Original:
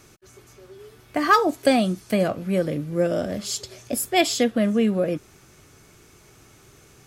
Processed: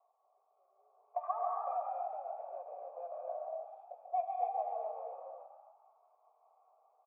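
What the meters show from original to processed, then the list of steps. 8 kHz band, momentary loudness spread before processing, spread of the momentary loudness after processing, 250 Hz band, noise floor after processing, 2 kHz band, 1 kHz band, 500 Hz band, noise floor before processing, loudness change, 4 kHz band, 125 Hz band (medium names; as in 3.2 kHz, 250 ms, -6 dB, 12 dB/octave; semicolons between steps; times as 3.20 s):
under -40 dB, 11 LU, 13 LU, under -40 dB, -75 dBFS, under -40 dB, -10.0 dB, -17.5 dB, -53 dBFS, -17.5 dB, under -40 dB, under -40 dB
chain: local Wiener filter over 25 samples; steep high-pass 540 Hz 48 dB/octave; treble shelf 3 kHz -10 dB; band-stop 1.6 kHz, Q 20; comb 4.5 ms, depth 31%; compression 3:1, threshold -35 dBFS, peak gain reduction 15 dB; cascade formant filter a; rotary cabinet horn 0.6 Hz, later 5 Hz, at 4.65 s; frequency-shifting echo 139 ms, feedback 53%, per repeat +35 Hz, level -6.5 dB; gated-style reverb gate 310 ms rising, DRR -0.5 dB; trim +5 dB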